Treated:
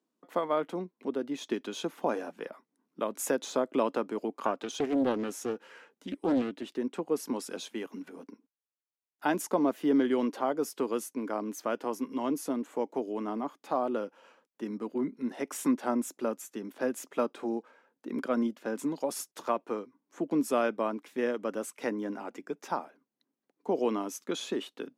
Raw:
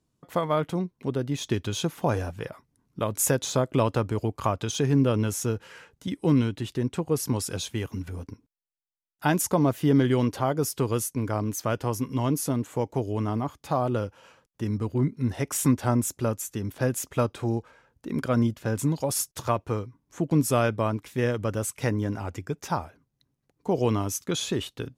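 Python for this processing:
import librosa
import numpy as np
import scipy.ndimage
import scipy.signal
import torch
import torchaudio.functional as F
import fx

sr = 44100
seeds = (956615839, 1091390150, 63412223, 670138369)

y = scipy.signal.sosfilt(scipy.signal.butter(6, 220.0, 'highpass', fs=sr, output='sos'), x)
y = fx.high_shelf(y, sr, hz=3500.0, db=-9.0)
y = fx.doppler_dist(y, sr, depth_ms=0.5, at=(4.41, 6.77))
y = y * librosa.db_to_amplitude(-3.0)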